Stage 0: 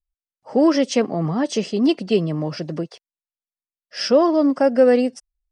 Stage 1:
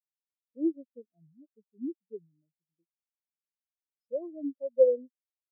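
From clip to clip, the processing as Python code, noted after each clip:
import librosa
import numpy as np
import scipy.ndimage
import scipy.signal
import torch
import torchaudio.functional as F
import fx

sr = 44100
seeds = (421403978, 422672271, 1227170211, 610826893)

y = fx.spectral_expand(x, sr, expansion=4.0)
y = F.gain(torch.from_numpy(y), -7.0).numpy()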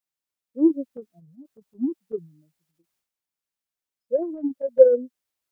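y = fx.rider(x, sr, range_db=3, speed_s=2.0)
y = fx.transient(y, sr, attack_db=7, sustain_db=11)
y = F.gain(torch.from_numpy(y), 2.5).numpy()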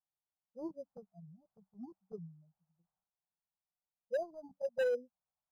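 y = fx.curve_eq(x, sr, hz=(110.0, 190.0, 280.0, 760.0, 1500.0, 2300.0), db=(0, 4, -26, 5, -7, -27))
y = np.clip(y, -10.0 ** (-24.5 / 20.0), 10.0 ** (-24.5 / 20.0))
y = np.interp(np.arange(len(y)), np.arange(len(y))[::8], y[::8])
y = F.gain(torch.from_numpy(y), -4.0).numpy()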